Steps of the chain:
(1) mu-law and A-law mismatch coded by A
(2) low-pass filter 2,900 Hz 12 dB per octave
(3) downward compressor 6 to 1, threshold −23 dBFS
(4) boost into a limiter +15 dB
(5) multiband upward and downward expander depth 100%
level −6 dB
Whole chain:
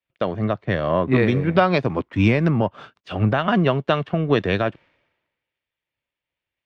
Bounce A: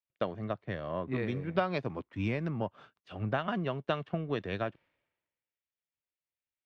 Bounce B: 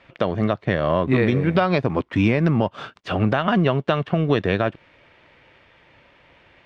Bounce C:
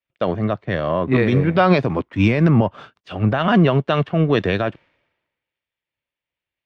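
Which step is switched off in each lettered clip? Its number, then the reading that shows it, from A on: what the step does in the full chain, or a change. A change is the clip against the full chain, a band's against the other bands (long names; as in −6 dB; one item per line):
4, change in crest factor +2.5 dB
5, change in crest factor −5.5 dB
3, average gain reduction 4.5 dB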